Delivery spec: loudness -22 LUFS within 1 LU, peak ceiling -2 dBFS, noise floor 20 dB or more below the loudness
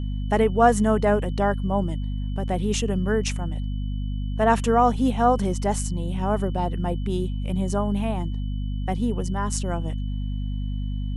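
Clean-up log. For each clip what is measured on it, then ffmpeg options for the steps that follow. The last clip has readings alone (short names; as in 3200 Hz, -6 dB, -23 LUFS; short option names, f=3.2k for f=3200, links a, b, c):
hum 50 Hz; harmonics up to 250 Hz; hum level -25 dBFS; steady tone 3000 Hz; tone level -51 dBFS; loudness -24.5 LUFS; peak -5.0 dBFS; loudness target -22.0 LUFS
-> -af "bandreject=f=50:t=h:w=6,bandreject=f=100:t=h:w=6,bandreject=f=150:t=h:w=6,bandreject=f=200:t=h:w=6,bandreject=f=250:t=h:w=6"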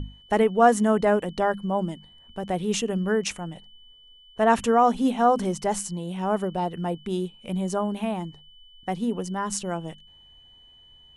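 hum none; steady tone 3000 Hz; tone level -51 dBFS
-> -af "bandreject=f=3k:w=30"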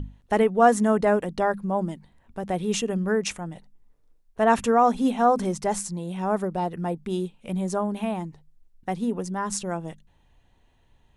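steady tone none; loudness -25.0 LUFS; peak -6.0 dBFS; loudness target -22.0 LUFS
-> -af "volume=3dB"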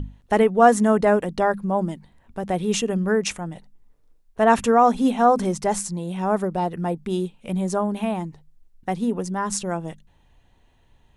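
loudness -22.0 LUFS; peak -3.0 dBFS; noise floor -59 dBFS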